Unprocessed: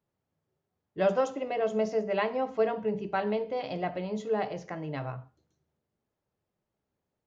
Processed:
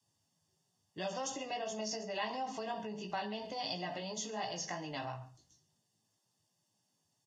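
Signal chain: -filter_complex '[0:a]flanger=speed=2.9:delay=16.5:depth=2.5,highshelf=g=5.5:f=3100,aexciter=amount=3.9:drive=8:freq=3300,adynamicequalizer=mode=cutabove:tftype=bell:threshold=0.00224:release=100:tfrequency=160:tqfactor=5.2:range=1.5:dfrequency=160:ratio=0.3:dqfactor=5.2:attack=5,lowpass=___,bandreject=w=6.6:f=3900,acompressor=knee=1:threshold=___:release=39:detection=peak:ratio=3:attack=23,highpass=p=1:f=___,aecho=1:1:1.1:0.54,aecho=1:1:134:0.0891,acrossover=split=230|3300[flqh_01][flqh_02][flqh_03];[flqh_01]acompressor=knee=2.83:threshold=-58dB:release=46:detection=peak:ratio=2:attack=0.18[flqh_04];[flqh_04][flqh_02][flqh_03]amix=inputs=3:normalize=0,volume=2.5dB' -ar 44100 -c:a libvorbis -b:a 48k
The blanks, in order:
5800, -45dB, 49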